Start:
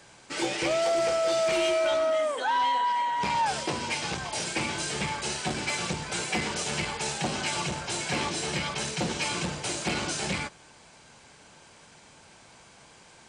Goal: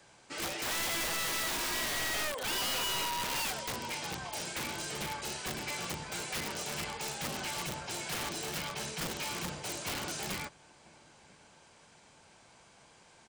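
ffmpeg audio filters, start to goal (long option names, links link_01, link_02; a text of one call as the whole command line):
ffmpeg -i in.wav -filter_complex "[0:a]asettb=1/sr,asplit=3[link_01][link_02][link_03];[link_01]atrim=end=1.044[link_04];[link_02]atrim=start=1.04:end=2.14,asetpts=PTS-STARTPTS,afade=type=in:duration=0.004:curve=qsin,afade=type=out:start_time=1.096:duration=0.004:curve=qsin,asuperstop=centerf=780:order=8:qfactor=5.8[link_05];[link_03]atrim=start=2.136[link_06];[link_04][link_05]acrossfade=duration=0.004:curve1=hsin:curve2=qsin[link_07];[link_07][link_06]acrossfade=duration=0.004:curve1=qsin:curve2=hsin,acrossover=split=700|730[link_08][link_09][link_10];[link_09]acontrast=21[link_11];[link_10]asoftclip=type=hard:threshold=-27dB[link_12];[link_08][link_11][link_12]amix=inputs=3:normalize=0,asplit=2[link_13][link_14];[link_14]adelay=991.3,volume=-25dB,highshelf=frequency=4000:gain=-22.3[link_15];[link_13][link_15]amix=inputs=2:normalize=0,aeval=exprs='(mod(14.1*val(0)+1,2)-1)/14.1':channel_layout=same,volume=-7dB" out.wav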